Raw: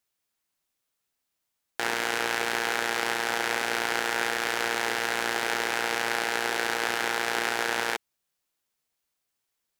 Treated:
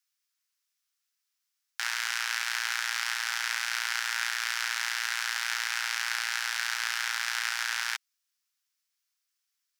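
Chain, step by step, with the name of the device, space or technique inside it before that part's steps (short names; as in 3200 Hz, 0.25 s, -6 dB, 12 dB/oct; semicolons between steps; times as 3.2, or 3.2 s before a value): headphones lying on a table (HPF 1200 Hz 24 dB/oct; bell 5400 Hz +6 dB 0.58 oct); gain -2 dB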